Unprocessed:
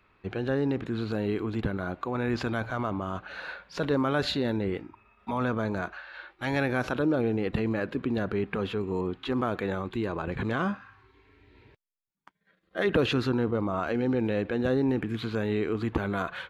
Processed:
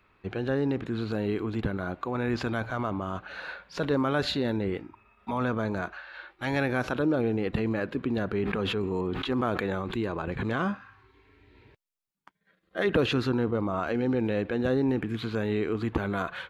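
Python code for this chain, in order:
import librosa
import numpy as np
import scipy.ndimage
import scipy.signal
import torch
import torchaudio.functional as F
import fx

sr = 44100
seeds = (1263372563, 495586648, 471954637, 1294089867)

y = fx.sustainer(x, sr, db_per_s=26.0, at=(8.43, 10.02), fade=0.02)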